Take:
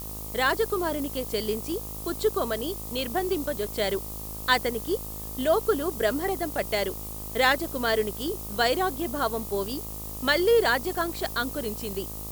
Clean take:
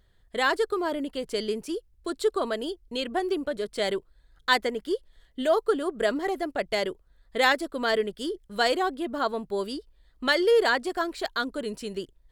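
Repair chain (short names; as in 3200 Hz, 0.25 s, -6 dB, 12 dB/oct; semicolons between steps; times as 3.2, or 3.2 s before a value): de-hum 52.9 Hz, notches 24; noise print and reduce 23 dB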